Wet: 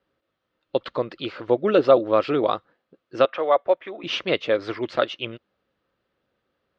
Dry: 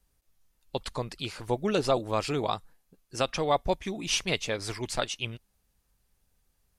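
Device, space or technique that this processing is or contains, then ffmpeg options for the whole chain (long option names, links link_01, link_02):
kitchen radio: -filter_complex "[0:a]highpass=180,equalizer=frequency=180:width_type=q:width=4:gain=-4,equalizer=frequency=330:width_type=q:width=4:gain=6,equalizer=frequency=540:width_type=q:width=4:gain=8,equalizer=frequency=850:width_type=q:width=4:gain=-5,equalizer=frequency=1300:width_type=q:width=4:gain=5,equalizer=frequency=2400:width_type=q:width=4:gain=-4,lowpass=frequency=3400:width=0.5412,lowpass=frequency=3400:width=1.3066,asettb=1/sr,asplit=3[link_01][link_02][link_03];[link_01]atrim=end=3.254[link_04];[link_02]atrim=start=3.25:end=4.04,asetpts=PTS-STARTPTS,afade=type=in:duration=0.004:curve=qsin,afade=type=out:start_time=0.786:duration=0.004:curve=qsin,acrossover=split=450 3000:gain=0.126 1 0.178[link_05][link_06][link_07];[link_05][link_06][link_07]amix=inputs=3:normalize=0[link_08];[link_03]atrim=start=4.036[link_09];[link_04][link_08]acrossfade=duration=0.004:curve1=hsin:curve2=qsin[link_10];[link_10][link_09]acrossfade=duration=0.004:curve1=qsin:curve2=hsin,volume=5.5dB"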